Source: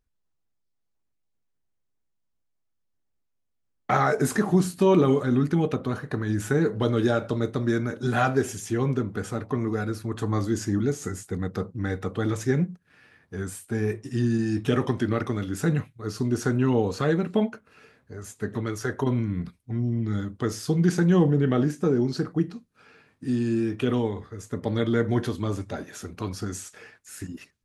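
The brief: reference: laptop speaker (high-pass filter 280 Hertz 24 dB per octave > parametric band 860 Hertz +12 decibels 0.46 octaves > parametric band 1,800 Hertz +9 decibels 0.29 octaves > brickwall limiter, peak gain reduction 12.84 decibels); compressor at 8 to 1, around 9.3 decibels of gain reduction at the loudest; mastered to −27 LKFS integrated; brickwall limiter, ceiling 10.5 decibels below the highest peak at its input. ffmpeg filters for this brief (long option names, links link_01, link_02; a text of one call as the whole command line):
ffmpeg -i in.wav -af "acompressor=threshold=-24dB:ratio=8,alimiter=limit=-24dB:level=0:latency=1,highpass=frequency=280:width=0.5412,highpass=frequency=280:width=1.3066,equalizer=frequency=860:width_type=o:width=0.46:gain=12,equalizer=frequency=1800:width_type=o:width=0.29:gain=9,volume=13dB,alimiter=limit=-17.5dB:level=0:latency=1" out.wav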